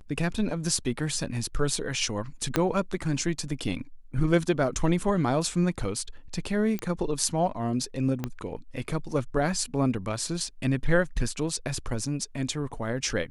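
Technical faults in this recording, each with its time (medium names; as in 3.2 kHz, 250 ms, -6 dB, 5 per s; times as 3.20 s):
2.56 s: pop -8 dBFS
6.79 s: pop -18 dBFS
8.24 s: pop -16 dBFS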